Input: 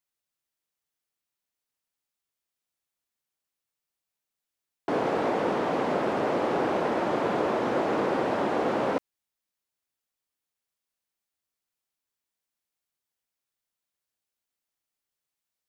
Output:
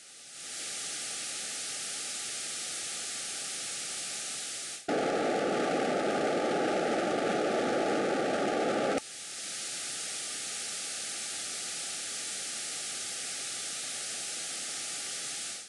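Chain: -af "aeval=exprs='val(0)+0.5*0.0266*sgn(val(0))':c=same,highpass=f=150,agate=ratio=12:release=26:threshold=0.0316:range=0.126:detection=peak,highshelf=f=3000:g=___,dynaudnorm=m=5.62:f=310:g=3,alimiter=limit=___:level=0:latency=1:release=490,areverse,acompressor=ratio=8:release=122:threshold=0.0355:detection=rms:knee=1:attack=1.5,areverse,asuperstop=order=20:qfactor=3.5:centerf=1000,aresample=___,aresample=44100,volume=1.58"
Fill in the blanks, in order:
6, 0.398, 22050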